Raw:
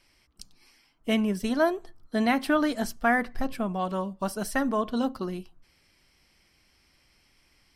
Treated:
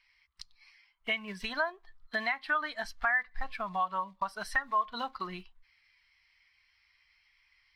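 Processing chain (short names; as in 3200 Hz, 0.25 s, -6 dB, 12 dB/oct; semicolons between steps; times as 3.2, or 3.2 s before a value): block floating point 5-bit; graphic EQ 250/500/1000/2000/4000 Hz -11/-4/+9/+11/+10 dB; compressor 4:1, threshold -32 dBFS, peak gain reduction 17.5 dB; spectral expander 1.5:1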